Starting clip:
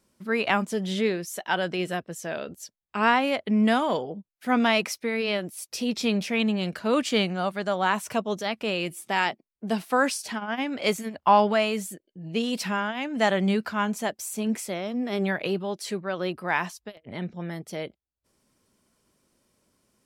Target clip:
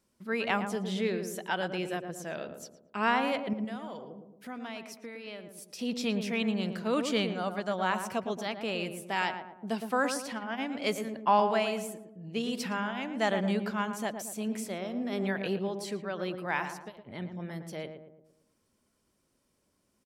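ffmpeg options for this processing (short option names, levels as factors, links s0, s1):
-filter_complex "[0:a]asettb=1/sr,asplit=3[s0][s1][s2];[s0]atrim=end=3.534[s3];[s1]atrim=start=3.53:end=5.79,asetpts=PTS-STARTPTS,afade=t=in:d=0.004:c=qsin,afade=t=out:st=2.256:d=0.004:c=qsin,acompressor=threshold=0.0112:ratio=2.5[s4];[s2]atrim=start=5.786[s5];[s3][s4]acrossfade=d=0.004:c1=hsin:c2=qsin[s6];[s6][s5]acrossfade=d=0.004:c1=qsin:c2=hsin,asplit=2[s7][s8];[s8]adelay=113,lowpass=f=1100:p=1,volume=0.501,asplit=2[s9][s10];[s10]adelay=113,lowpass=f=1100:p=1,volume=0.52,asplit=2[s11][s12];[s12]adelay=113,lowpass=f=1100:p=1,volume=0.52,asplit=2[s13][s14];[s14]adelay=113,lowpass=f=1100:p=1,volume=0.52,asplit=2[s15][s16];[s16]adelay=113,lowpass=f=1100:p=1,volume=0.52,asplit=2[s17][s18];[s18]adelay=113,lowpass=f=1100:p=1,volume=0.52[s19];[s7][s9][s11][s13][s15][s17][s19]amix=inputs=7:normalize=0,volume=0.501"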